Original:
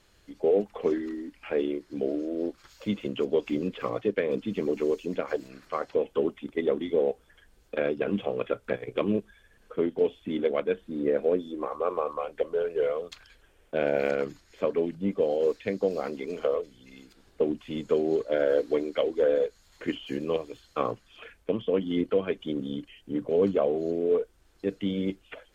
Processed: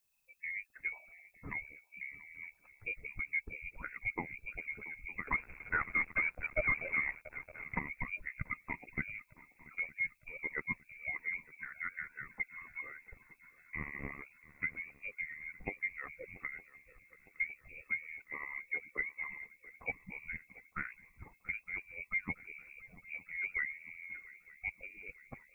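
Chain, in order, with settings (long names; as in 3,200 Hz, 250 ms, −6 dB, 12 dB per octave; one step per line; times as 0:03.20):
spectral dynamics exaggerated over time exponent 1.5
camcorder AGC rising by 7.1 dB per second
harmonic and percussive parts rebalanced harmonic −16 dB
feedback echo with a long and a short gap by turns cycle 910 ms, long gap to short 3 to 1, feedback 54%, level −20 dB
0:05.27–0:07.79: leveller curve on the samples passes 3
voice inversion scrambler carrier 2,600 Hz
background noise violet −64 dBFS
spectral tilt −3 dB per octave
level −4 dB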